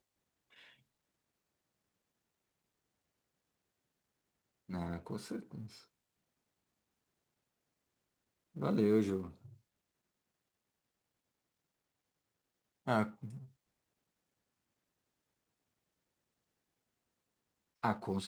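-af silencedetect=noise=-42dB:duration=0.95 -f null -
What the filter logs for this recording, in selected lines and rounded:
silence_start: 0.00
silence_end: 4.70 | silence_duration: 4.70
silence_start: 5.66
silence_end: 8.57 | silence_duration: 2.91
silence_start: 9.27
silence_end: 12.87 | silence_duration: 3.60
silence_start: 13.37
silence_end: 17.84 | silence_duration: 4.46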